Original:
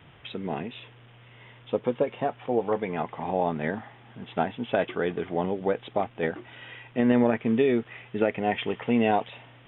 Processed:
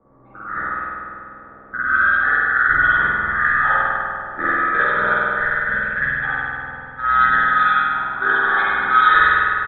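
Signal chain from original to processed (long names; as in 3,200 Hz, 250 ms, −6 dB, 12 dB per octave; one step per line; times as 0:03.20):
neighbouring bands swapped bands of 1,000 Hz
low-pass that shuts in the quiet parts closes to 530 Hz, open at −19 dBFS
gain on a spectral selection 0:05.20–0:07.91, 300–1,600 Hz −8 dB
in parallel at −2.5 dB: downward compressor, threshold −34 dBFS, peak gain reduction 15 dB
on the sum: double-tracking delay 15 ms −3 dB
spring reverb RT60 2.9 s, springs 48 ms, chirp 75 ms, DRR −9.5 dB
low-pass that shuts in the quiet parts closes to 1,100 Hz, open at −1.5 dBFS
level −2 dB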